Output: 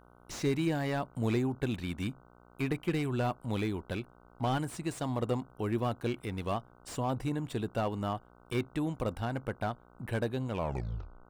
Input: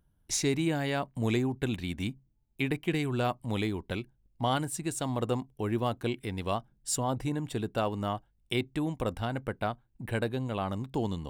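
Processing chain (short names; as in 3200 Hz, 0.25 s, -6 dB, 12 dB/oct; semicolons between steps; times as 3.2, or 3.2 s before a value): tape stop at the end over 0.79 s; buzz 60 Hz, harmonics 25, -58 dBFS -2 dB/oct; slew limiter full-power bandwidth 52 Hz; gain -1.5 dB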